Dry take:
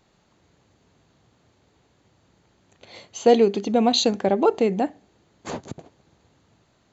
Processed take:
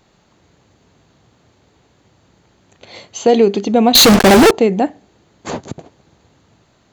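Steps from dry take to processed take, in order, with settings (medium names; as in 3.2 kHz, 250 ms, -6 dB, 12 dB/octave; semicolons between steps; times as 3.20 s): 3.95–4.51 s: fuzz box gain 48 dB, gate -39 dBFS; loudness maximiser +8.5 dB; trim -1 dB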